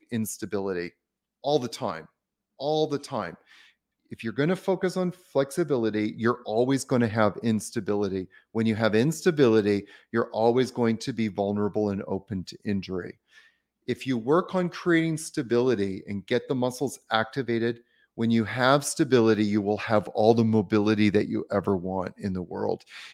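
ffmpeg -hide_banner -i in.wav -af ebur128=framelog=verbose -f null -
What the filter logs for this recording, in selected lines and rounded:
Integrated loudness:
  I:         -26.2 LUFS
  Threshold: -36.5 LUFS
Loudness range:
  LRA:         7.0 LU
  Threshold: -46.4 LUFS
  LRA low:   -30.6 LUFS
  LRA high:  -23.6 LUFS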